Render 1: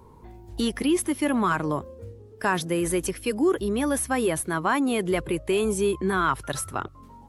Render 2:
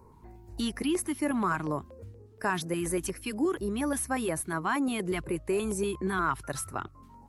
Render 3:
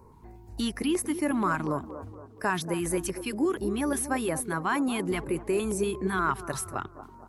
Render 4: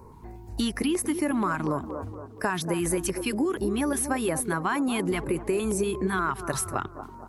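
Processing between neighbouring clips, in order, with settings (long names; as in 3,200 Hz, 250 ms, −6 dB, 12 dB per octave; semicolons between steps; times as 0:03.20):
auto-filter notch square 4.2 Hz 520–3,300 Hz; level −4.5 dB
delay with a band-pass on its return 234 ms, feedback 45%, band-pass 490 Hz, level −10 dB; level +1.5 dB
downward compressor, threshold −28 dBFS, peak gain reduction 7.5 dB; level +5.5 dB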